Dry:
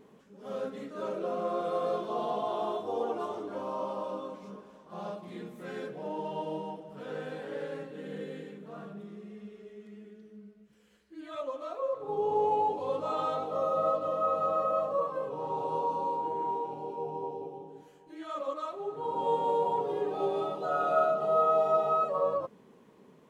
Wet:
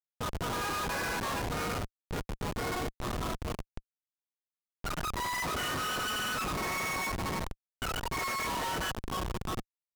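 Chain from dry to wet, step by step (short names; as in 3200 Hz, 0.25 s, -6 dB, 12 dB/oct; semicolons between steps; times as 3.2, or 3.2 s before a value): spectral gain 20.84–22.54, 540–5700 Hz -26 dB; Schmitt trigger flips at -34 dBFS; low-pass opened by the level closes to 2200 Hz; speed mistake 33 rpm record played at 78 rpm; gain +1 dB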